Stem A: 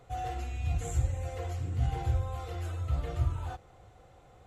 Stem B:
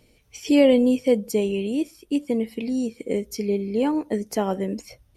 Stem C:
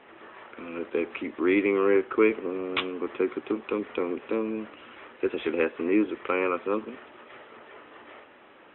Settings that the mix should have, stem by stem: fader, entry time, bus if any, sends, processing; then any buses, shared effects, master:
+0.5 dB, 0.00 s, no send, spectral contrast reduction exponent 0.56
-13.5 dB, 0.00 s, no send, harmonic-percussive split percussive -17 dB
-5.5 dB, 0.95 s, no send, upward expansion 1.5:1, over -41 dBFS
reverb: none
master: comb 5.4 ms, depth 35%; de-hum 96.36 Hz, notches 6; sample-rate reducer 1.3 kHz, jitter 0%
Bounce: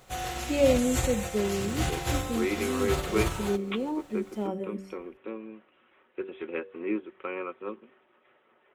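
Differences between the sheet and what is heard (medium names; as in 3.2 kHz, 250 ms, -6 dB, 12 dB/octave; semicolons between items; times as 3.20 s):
stem B -13.5 dB -> -6.5 dB; master: missing sample-rate reducer 1.3 kHz, jitter 0%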